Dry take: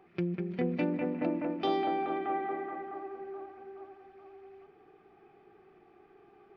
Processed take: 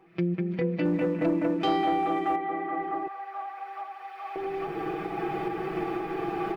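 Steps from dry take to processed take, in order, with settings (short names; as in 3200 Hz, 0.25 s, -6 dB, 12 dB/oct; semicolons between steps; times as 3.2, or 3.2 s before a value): recorder AGC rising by 15 dB/s; 3.07–4.36 HPF 720 Hz 24 dB/oct; comb 6.1 ms, depth 85%; 0.85–2.36 sample leveller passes 1; ending taper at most 320 dB/s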